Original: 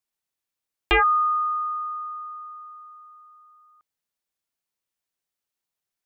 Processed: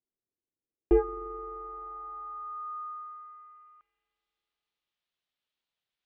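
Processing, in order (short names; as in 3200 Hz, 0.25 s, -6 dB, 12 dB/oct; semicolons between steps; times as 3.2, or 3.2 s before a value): spring tank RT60 3.4 s, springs 43 ms, chirp 40 ms, DRR 15.5 dB; low-pass sweep 380 Hz -> 3500 Hz, 1.2–4.25; gain -2 dB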